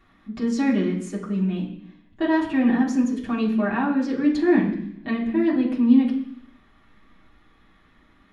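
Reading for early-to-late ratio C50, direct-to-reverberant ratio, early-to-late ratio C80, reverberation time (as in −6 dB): 7.5 dB, −7.0 dB, 10.0 dB, 0.70 s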